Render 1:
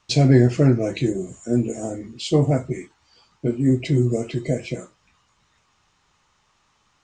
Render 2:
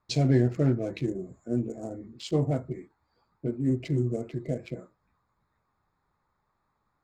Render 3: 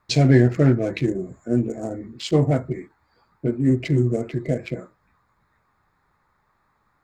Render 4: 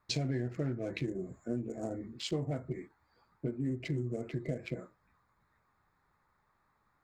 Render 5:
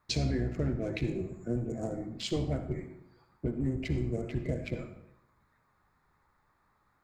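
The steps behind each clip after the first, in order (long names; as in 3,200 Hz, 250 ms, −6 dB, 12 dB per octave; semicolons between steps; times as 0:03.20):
adaptive Wiener filter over 15 samples; level −8 dB
parametric band 1,800 Hz +6 dB 1 octave; level +7.5 dB
downward compressor 6 to 1, threshold −24 dBFS, peak gain reduction 13.5 dB; level −7.5 dB
sub-octave generator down 1 octave, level −3 dB; convolution reverb RT60 0.80 s, pre-delay 54 ms, DRR 9 dB; level +2 dB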